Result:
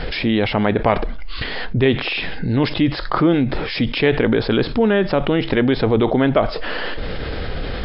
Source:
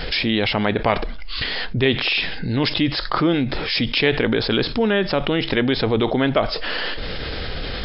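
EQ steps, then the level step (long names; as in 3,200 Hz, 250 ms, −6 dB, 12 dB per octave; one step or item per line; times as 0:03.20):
low-pass filter 1,500 Hz 6 dB per octave
+3.5 dB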